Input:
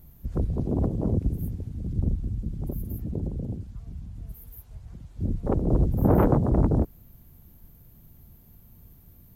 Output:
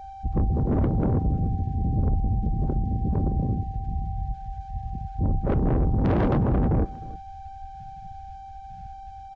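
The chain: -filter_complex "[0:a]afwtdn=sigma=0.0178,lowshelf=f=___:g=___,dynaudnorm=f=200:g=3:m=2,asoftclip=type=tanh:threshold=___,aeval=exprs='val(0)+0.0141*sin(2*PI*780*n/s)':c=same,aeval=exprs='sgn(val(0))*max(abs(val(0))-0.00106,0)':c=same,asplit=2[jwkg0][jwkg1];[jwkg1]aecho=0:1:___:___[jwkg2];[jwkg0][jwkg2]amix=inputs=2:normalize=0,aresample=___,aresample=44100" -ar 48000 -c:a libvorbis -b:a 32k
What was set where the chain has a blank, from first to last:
390, 4.5, 0.119, 311, 0.106, 16000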